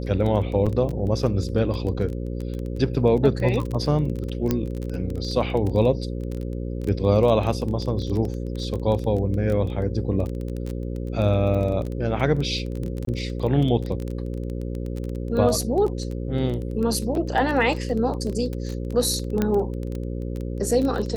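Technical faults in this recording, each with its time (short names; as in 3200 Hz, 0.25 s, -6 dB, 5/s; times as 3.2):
buzz 60 Hz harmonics 9 -29 dBFS
crackle 17/s -26 dBFS
0.66–0.67 gap 5.9 ms
4.51 pop -8 dBFS
13.05–13.07 gap 23 ms
19.42 pop -10 dBFS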